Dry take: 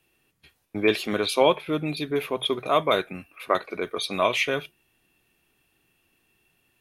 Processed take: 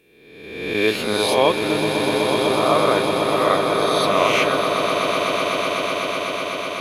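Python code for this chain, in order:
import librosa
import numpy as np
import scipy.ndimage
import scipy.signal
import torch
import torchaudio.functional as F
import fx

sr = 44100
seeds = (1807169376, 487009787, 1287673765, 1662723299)

y = fx.spec_swells(x, sr, rise_s=1.16)
y = fx.savgol(y, sr, points=41, at=(1.78, 2.96))
y = fx.echo_swell(y, sr, ms=125, loudest=8, wet_db=-9.5)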